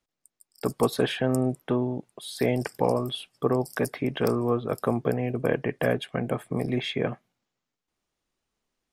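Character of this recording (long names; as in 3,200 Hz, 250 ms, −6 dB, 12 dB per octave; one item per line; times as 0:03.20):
background noise floor −86 dBFS
spectral slope −5.5 dB per octave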